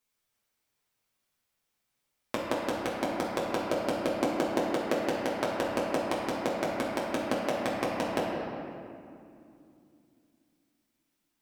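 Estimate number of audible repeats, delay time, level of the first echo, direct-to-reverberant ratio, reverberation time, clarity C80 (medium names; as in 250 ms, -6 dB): no echo, no echo, no echo, -6.0 dB, 2.5 s, 1.0 dB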